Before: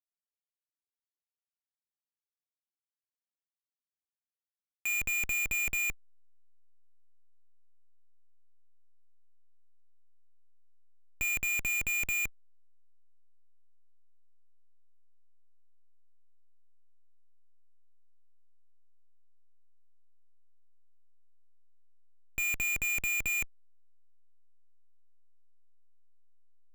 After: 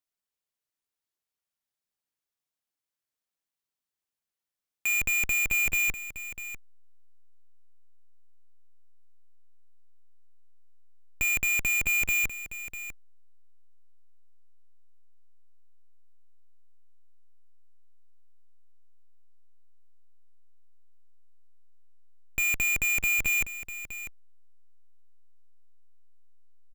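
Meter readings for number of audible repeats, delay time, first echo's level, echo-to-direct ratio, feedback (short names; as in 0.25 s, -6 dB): 1, 0.647 s, -12.5 dB, -12.5 dB, no steady repeat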